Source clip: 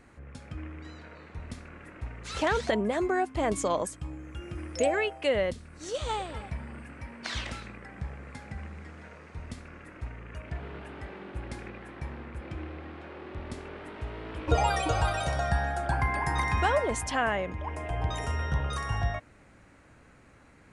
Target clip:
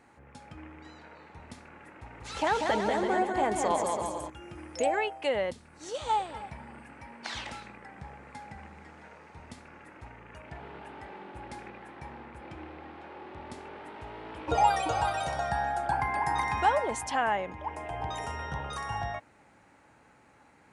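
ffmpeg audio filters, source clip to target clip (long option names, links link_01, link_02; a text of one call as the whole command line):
ffmpeg -i in.wav -filter_complex "[0:a]highpass=frequency=190:poles=1,equalizer=frequency=850:width_type=o:width=0.24:gain=11,asettb=1/sr,asplit=3[link_01][link_02][link_03];[link_01]atrim=end=1.934[link_04];[link_02]atrim=start=1.93:end=4.3,asetpts=PTS-STARTPTS,afade=type=in:duration=0.004:curve=qsin,afade=type=out:start_time=2.366:duration=0.004:curve=qsin,aecho=1:1:190|332.5|439.4|519.5|579.6:0.631|0.398|0.251|0.158|0.1,atrim=end_sample=104517[link_05];[link_03]atrim=start=4.296[link_06];[link_04][link_05]acrossfade=duration=0.004:curve1=hsin:curve2=qsin[link_07];[link_07][link_06]acrossfade=duration=0.004:curve1=qsin:curve2=hsin,volume=-2.5dB" out.wav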